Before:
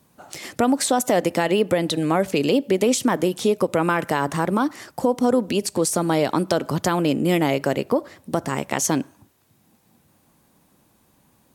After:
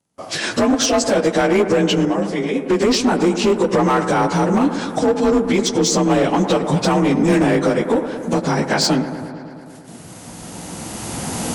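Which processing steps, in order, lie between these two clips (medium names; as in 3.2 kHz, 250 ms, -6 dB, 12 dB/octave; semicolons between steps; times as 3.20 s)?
frequency axis rescaled in octaves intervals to 90%; recorder AGC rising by 11 dB/s; gate -53 dBFS, range -24 dB; in parallel at +2 dB: compression 6:1, threshold -31 dBFS, peak gain reduction 15 dB; 2.05–2.70 s: on the sum: feedback comb 100 Hz, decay 0.29 s, harmonics all, mix 70%; hard clipper -15.5 dBFS, distortion -14 dB; on a send: feedback echo behind a low-pass 110 ms, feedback 76%, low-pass 1.8 kHz, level -11 dB; on the sum: trim +4.5 dB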